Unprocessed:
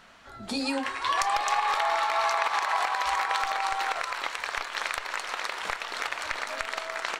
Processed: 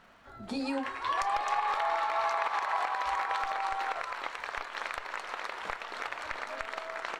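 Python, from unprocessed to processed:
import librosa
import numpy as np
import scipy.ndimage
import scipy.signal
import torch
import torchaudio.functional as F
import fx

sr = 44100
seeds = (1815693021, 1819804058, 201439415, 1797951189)

y = fx.dmg_crackle(x, sr, seeds[0], per_s=360.0, level_db=-49.0)
y = fx.high_shelf(y, sr, hz=2900.0, db=-11.5)
y = y * librosa.db_to_amplitude(-2.5)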